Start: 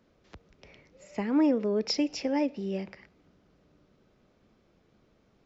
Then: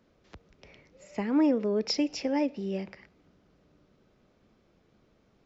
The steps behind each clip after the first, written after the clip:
no processing that can be heard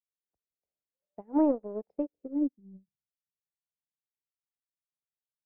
power curve on the samples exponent 1.4
low-pass filter sweep 730 Hz → 140 Hz, 0:01.87–0:02.94
expander for the loud parts 2.5 to 1, over −43 dBFS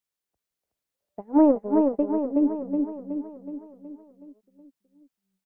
repeating echo 371 ms, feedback 54%, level −4 dB
level +7 dB

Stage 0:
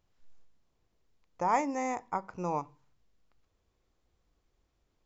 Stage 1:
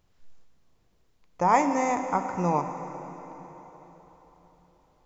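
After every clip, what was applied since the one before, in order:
parametric band 160 Hz +2.5 dB 0.77 octaves
dense smooth reverb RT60 4.3 s, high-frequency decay 0.85×, DRR 7 dB
level +6.5 dB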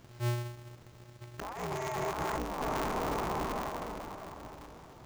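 compressor whose output falls as the input rises −36 dBFS, ratio −1
brickwall limiter −29 dBFS, peak gain reduction 9.5 dB
ring modulator with a square carrier 120 Hz
level +4 dB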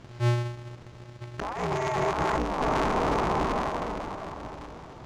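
high-frequency loss of the air 77 metres
level +8 dB

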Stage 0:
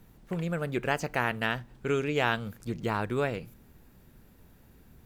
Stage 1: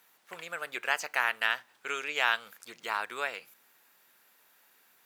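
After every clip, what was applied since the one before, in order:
high-pass filter 1,100 Hz 12 dB per octave
level +3.5 dB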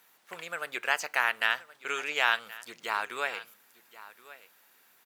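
single-tap delay 1,075 ms −18 dB
level +1.5 dB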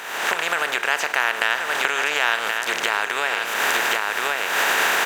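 compressor on every frequency bin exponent 0.4
camcorder AGC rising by 56 dB per second
level +2 dB

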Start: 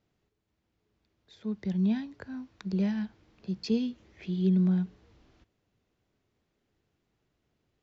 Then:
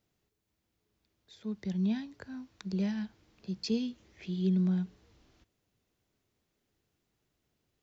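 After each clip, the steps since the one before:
high-shelf EQ 5,100 Hz +11.5 dB
level −3.5 dB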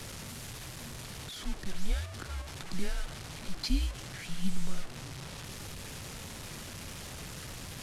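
linear delta modulator 64 kbit/s, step −40 dBFS
frequency shifter −190 Hz
level +3.5 dB

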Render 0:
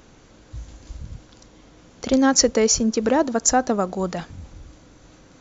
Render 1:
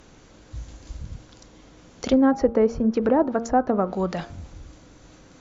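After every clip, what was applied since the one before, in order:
treble cut that deepens with the level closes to 1,100 Hz, closed at −15.5 dBFS
hum removal 115.7 Hz, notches 13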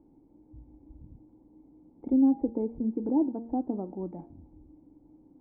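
formant resonators in series u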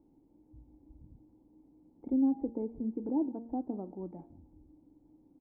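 single-tap delay 175 ms −22.5 dB
level −5.5 dB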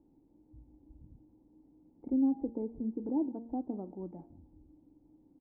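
high-frequency loss of the air 440 metres

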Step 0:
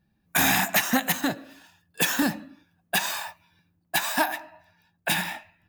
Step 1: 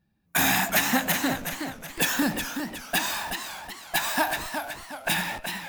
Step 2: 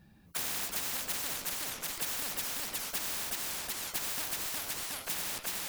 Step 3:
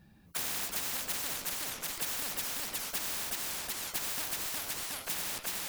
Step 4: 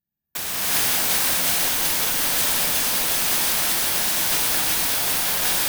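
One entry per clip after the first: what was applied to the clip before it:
in parallel at −9 dB: comparator with hysteresis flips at −37.5 dBFS; on the sum: feedback echo with a swinging delay time 369 ms, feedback 43%, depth 139 cents, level −7 dB; level −2 dB
every bin compressed towards the loudest bin 10 to 1; level −8.5 dB
no processing that can be heard
noise gate −49 dBFS, range −39 dB; bad sample-rate conversion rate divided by 3×, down filtered, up zero stuff; reverb whose tail is shaped and stops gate 410 ms rising, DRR −8 dB; level +6 dB

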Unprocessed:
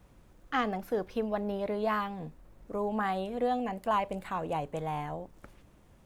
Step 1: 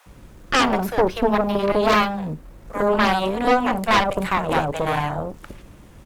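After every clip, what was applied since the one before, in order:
multiband delay without the direct sound highs, lows 60 ms, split 680 Hz
harmonic generator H 5 −11 dB, 6 −6 dB, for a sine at −17 dBFS
level +7 dB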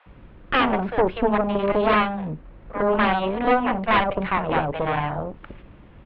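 inverse Chebyshev low-pass filter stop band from 6,100 Hz, stop band 40 dB
level −1.5 dB

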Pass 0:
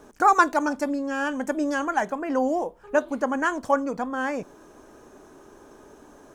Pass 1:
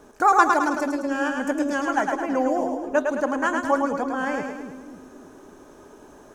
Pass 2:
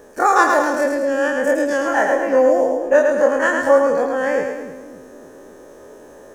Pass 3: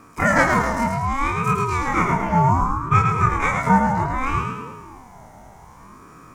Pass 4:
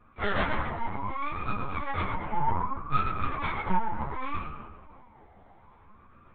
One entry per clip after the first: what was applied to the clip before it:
echo with a time of its own for lows and highs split 340 Hz, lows 279 ms, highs 107 ms, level −4 dB
every bin's largest magnitude spread in time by 60 ms; high-shelf EQ 7,200 Hz +8 dB; hollow resonant body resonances 520/1,800 Hz, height 13 dB, ringing for 25 ms; level −3 dB
ring modulator whose carrier an LFO sweeps 530 Hz, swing 35%, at 0.65 Hz
stylus tracing distortion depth 0.16 ms; linear-prediction vocoder at 8 kHz pitch kept; string-ensemble chorus; level −8 dB

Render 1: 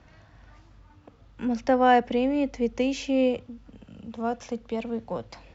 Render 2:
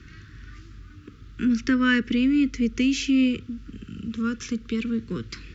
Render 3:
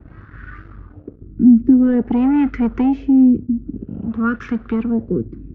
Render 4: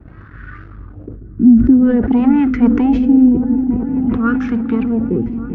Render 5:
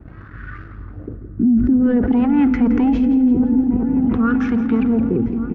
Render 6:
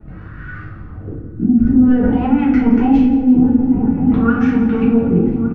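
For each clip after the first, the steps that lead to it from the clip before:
Chebyshev band-stop filter 390–1,300 Hz, order 3; in parallel at −3 dB: downward compressor, threshold −37 dBFS, peak gain reduction 14 dB; on the sum: level +5 dB
leveller curve on the samples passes 2; auto-filter low-pass sine 0.5 Hz 270–1,500 Hz
echo whose low-pass opens from repeat to repeat 389 ms, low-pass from 200 Hz, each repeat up 1 octave, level −6 dB; level that may fall only so fast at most 60 dB per second; level +1.5 dB
brickwall limiter −9.5 dBFS, peak gain reduction 8.5 dB; repeating echo 168 ms, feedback 51%, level −13 dB
double-tracking delay 44 ms −11 dB; rectangular room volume 60 cubic metres, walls mixed, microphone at 1.4 metres; level −4.5 dB

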